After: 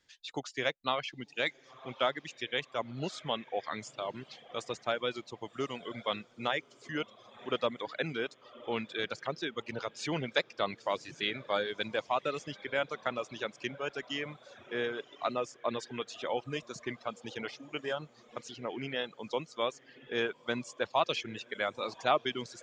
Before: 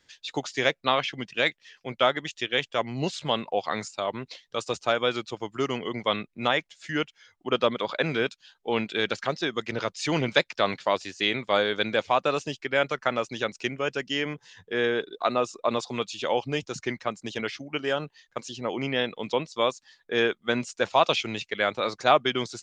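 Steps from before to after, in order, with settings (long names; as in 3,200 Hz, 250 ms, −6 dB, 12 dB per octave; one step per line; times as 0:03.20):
feedback delay with all-pass diffusion 1,046 ms, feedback 58%, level −15 dB
reverb reduction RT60 1.1 s
level −7.5 dB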